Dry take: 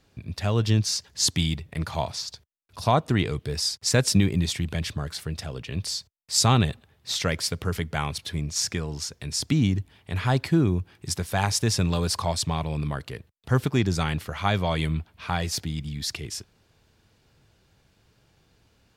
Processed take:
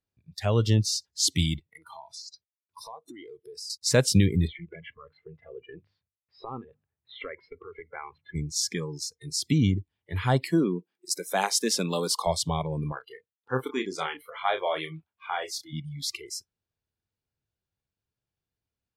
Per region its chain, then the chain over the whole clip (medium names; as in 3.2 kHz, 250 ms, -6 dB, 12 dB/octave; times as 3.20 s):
1.59–3.70 s: high-pass 130 Hz + compression 4:1, threshold -36 dBFS
4.47–8.35 s: low-pass 2.5 kHz 24 dB/octave + compression 12:1, threshold -27 dBFS + hum notches 50/100/150/200/250/300 Hz
10.45–12.27 s: steep high-pass 180 Hz + de-esser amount 20% + treble shelf 5.2 kHz +3.5 dB
12.92–15.73 s: high-pass 500 Hz 6 dB/octave + treble shelf 4.8 kHz -7.5 dB + doubling 31 ms -8 dB
whole clip: peaking EQ 84 Hz +3.5 dB 0.76 oct; spectral noise reduction 27 dB; dynamic bell 550 Hz, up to +5 dB, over -39 dBFS, Q 1.6; trim -1.5 dB